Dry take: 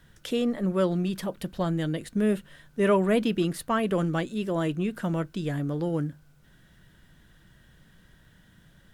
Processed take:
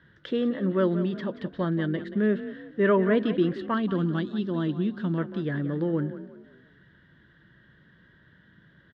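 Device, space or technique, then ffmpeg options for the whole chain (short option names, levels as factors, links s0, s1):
frequency-shifting delay pedal into a guitar cabinet: -filter_complex "[0:a]asplit=5[s0][s1][s2][s3][s4];[s1]adelay=179,afreqshift=33,volume=0.224[s5];[s2]adelay=358,afreqshift=66,volume=0.0851[s6];[s3]adelay=537,afreqshift=99,volume=0.0324[s7];[s4]adelay=716,afreqshift=132,volume=0.0123[s8];[s0][s5][s6][s7][s8]amix=inputs=5:normalize=0,highpass=89,equalizer=f=350:t=q:w=4:g=4,equalizer=f=760:t=q:w=4:g=-8,equalizer=f=1700:t=q:w=4:g=7,equalizer=f=2500:t=q:w=4:g=-10,lowpass=f=3500:w=0.5412,lowpass=f=3500:w=1.3066,asettb=1/sr,asplit=3[s9][s10][s11];[s9]atrim=end=3.744[s12];[s10]atrim=start=3.74:end=5.18,asetpts=PTS-STARTPTS,afade=t=in:d=0.004:c=qsin,afade=t=out:st=1.436:d=0.004:c=qsin,equalizer=f=250:t=o:w=1:g=4,equalizer=f=500:t=o:w=1:g=-9,equalizer=f=2000:t=o:w=1:g=-10,equalizer=f=4000:t=o:w=1:g=8[s13];[s11]atrim=start=5.176[s14];[s12][s13]acrossfade=d=0.004:c1=hsin:c2=qsin[s15];[s15][s14]acrossfade=d=0.004:c1=qsin:c2=hsin"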